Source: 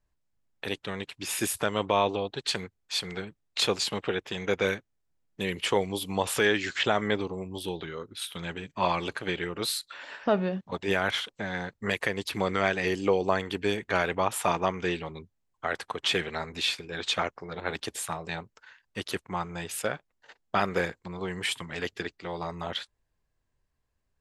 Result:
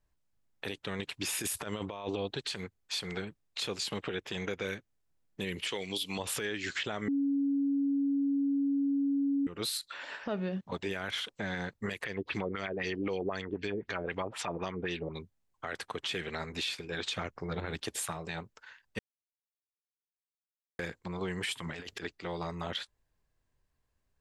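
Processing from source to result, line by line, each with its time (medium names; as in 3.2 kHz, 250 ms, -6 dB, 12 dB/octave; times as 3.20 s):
0.99–2.50 s: compressor with a negative ratio -30 dBFS, ratio -0.5
5.67–6.19 s: frequency weighting D
7.08–9.47 s: bleep 279 Hz -15 dBFS
12.04–15.18 s: LFO low-pass sine 3.9 Hz 370–5900 Hz
17.16–17.78 s: bass shelf 190 Hz +9.5 dB
18.99–20.79 s: mute
21.59–22.03 s: compressor with a negative ratio -42 dBFS
whole clip: dynamic bell 820 Hz, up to -5 dB, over -38 dBFS, Q 0.94; compression, threshold -29 dBFS; peak limiter -24 dBFS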